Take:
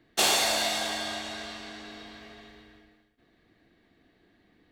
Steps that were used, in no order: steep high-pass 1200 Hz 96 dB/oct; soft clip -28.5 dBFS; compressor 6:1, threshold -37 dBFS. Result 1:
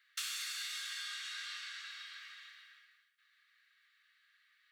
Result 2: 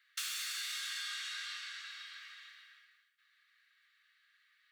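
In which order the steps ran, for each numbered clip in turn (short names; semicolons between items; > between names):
compressor > soft clip > steep high-pass; soft clip > steep high-pass > compressor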